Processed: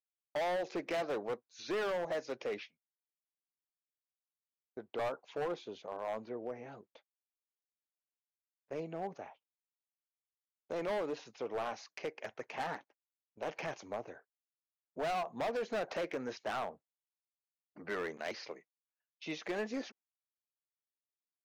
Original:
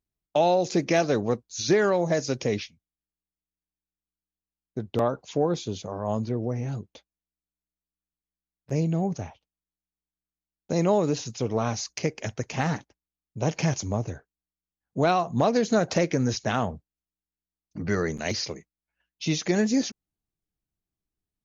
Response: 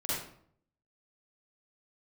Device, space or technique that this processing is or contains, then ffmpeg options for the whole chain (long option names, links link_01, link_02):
walkie-talkie: -af "highpass=500,lowpass=2300,asoftclip=type=hard:threshold=-27dB,agate=range=-13dB:threshold=-57dB:ratio=16:detection=peak,volume=-5dB"